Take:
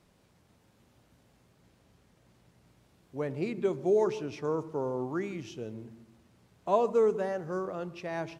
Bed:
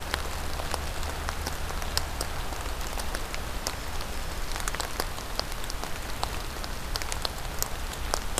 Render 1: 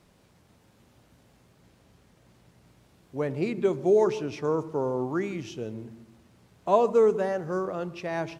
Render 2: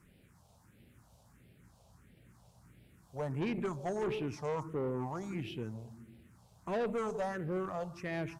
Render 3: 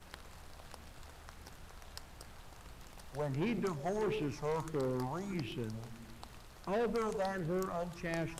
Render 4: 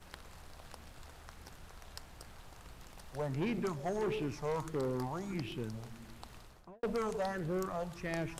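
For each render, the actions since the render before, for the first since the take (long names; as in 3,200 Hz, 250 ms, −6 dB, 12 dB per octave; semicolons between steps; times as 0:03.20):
level +4.5 dB
all-pass phaser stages 4, 1.5 Hz, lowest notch 300–1,100 Hz; tube saturation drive 30 dB, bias 0.3
mix in bed −21 dB
0:06.40–0:06.83: fade out and dull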